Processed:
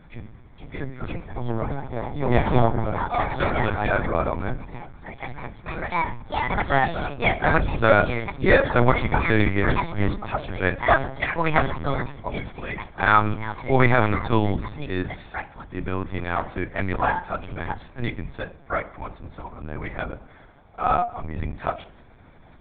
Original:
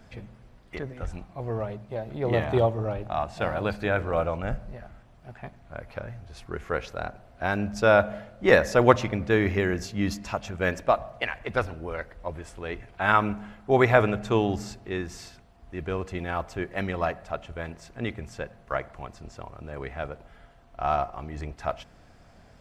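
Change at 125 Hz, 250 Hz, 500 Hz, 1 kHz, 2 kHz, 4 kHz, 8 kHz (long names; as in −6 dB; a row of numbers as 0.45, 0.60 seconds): +5.0 dB, +3.5 dB, +0.5 dB, +5.5 dB, +5.0 dB, +3.0 dB, below −30 dB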